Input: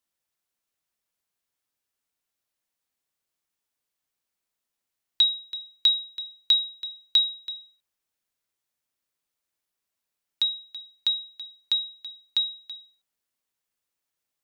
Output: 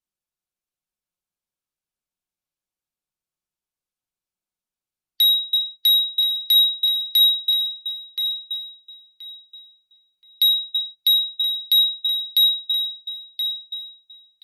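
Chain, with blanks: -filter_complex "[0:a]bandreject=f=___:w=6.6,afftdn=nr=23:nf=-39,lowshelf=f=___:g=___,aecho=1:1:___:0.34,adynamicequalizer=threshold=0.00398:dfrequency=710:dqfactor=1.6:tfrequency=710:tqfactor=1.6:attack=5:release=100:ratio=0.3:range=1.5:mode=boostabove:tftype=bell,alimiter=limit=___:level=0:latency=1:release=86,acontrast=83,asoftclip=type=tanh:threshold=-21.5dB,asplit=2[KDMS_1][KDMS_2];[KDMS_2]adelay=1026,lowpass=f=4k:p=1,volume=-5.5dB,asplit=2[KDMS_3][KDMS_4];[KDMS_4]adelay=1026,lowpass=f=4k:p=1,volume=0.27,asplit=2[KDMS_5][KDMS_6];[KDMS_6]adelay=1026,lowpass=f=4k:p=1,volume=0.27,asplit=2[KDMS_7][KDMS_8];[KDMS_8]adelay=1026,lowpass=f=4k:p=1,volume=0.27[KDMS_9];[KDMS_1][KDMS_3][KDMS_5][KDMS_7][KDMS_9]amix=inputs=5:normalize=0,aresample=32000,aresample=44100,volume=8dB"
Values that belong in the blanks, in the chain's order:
1.9k, 220, 9.5, 5.5, -14dB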